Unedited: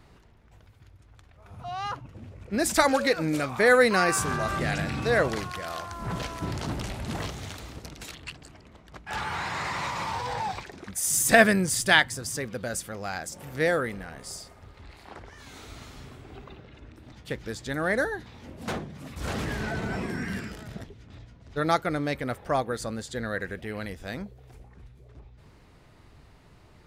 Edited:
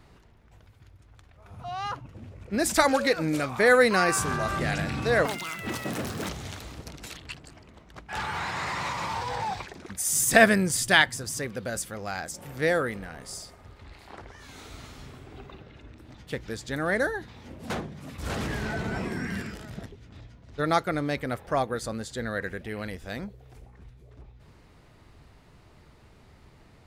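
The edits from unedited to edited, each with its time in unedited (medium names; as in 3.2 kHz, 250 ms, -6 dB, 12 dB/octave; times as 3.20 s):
5.25–7.27 s: speed 194%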